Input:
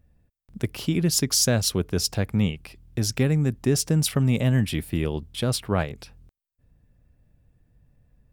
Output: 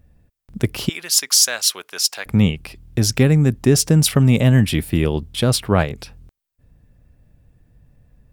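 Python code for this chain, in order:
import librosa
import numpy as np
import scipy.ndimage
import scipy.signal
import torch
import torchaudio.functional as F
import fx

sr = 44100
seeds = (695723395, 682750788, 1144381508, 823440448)

y = fx.highpass(x, sr, hz=1200.0, slope=12, at=(0.89, 2.26))
y = y * librosa.db_to_amplitude(7.5)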